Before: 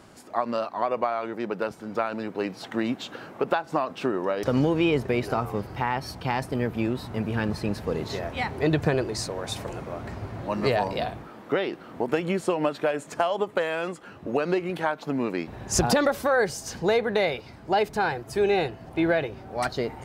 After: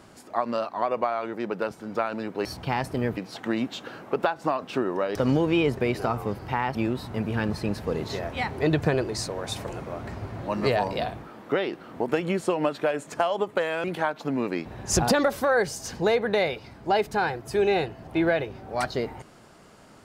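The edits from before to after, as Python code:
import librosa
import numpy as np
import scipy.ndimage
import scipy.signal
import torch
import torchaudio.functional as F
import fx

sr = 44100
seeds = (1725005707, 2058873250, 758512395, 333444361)

y = fx.edit(x, sr, fx.move(start_s=6.03, length_s=0.72, to_s=2.45),
    fx.cut(start_s=13.84, length_s=0.82), tone=tone)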